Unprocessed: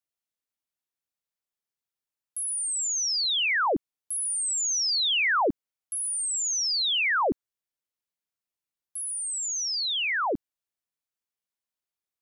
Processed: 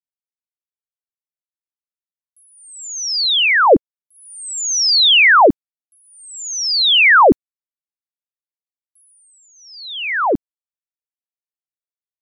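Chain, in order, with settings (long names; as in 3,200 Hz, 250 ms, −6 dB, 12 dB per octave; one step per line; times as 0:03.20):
noise gate −26 dBFS, range −37 dB
0:03.03–0:05.46: parametric band 500 Hz +7 dB 0.68 octaves
automatic gain control gain up to 16.5 dB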